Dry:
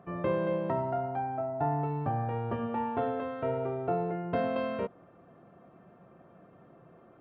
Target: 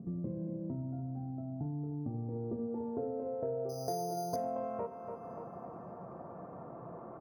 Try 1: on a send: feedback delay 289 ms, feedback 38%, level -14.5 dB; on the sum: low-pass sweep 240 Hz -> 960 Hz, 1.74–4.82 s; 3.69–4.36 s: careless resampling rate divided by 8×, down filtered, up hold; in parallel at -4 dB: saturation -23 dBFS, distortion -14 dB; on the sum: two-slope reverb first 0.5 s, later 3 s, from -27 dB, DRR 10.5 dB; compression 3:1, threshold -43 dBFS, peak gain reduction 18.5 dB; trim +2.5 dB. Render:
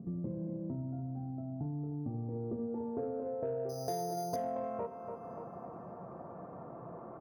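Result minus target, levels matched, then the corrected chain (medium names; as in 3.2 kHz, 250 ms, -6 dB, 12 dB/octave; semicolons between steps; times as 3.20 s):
saturation: distortion +12 dB
on a send: feedback delay 289 ms, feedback 38%, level -14.5 dB; on the sum: low-pass sweep 240 Hz -> 960 Hz, 1.74–4.82 s; 3.69–4.36 s: careless resampling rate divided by 8×, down filtered, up hold; in parallel at -4 dB: saturation -14.5 dBFS, distortion -26 dB; on the sum: two-slope reverb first 0.5 s, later 3 s, from -27 dB, DRR 10.5 dB; compression 3:1, threshold -43 dBFS, peak gain reduction 19 dB; trim +2.5 dB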